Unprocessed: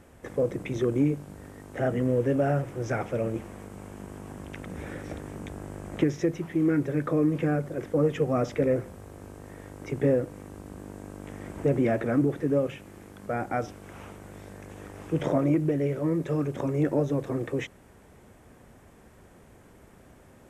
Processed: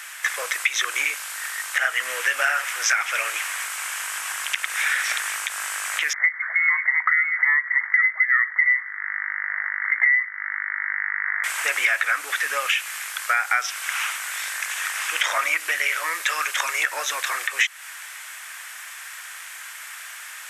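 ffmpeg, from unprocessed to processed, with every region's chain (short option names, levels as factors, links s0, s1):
-filter_complex "[0:a]asettb=1/sr,asplit=3[s0][s1][s2];[s0]atrim=end=6.134[s3];[s1]atrim=start=6.13:end=11.44,asetpts=PTS-STARTPTS,afade=t=in:d=0.004:c=qsin,afade=t=out:st=5.306:d=0.004:c=qsin,highpass=f=570:w=0.5412,highpass=f=570:w=1.3066,lowpass=f=2100:t=q:w=0.5098,lowpass=f=2100:t=q:w=0.6013,lowpass=f=2100:t=q:w=0.9,lowpass=f=2100:t=q:w=2.563,afreqshift=-2500[s4];[s2]atrim=start=11.436[s5];[s3][s4]acrossfade=d=0.004:c1=hsin:c2=qsin[s6];[s6][s5]acrossfade=d=0.004:c1=qsin:c2=hsin,highpass=f=1500:w=0.5412,highpass=f=1500:w=1.3066,acompressor=threshold=0.00562:ratio=6,alimiter=level_in=47.3:limit=0.891:release=50:level=0:latency=1,volume=0.501"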